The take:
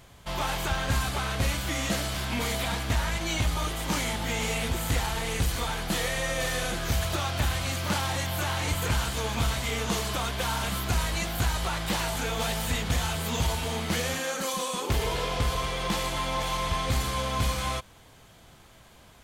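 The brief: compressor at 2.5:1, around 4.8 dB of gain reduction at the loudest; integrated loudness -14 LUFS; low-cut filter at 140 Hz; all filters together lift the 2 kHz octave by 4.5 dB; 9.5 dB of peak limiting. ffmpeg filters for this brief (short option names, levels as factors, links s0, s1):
-af "highpass=140,equalizer=f=2000:t=o:g=5.5,acompressor=threshold=0.0282:ratio=2.5,volume=11.2,alimiter=limit=0.531:level=0:latency=1"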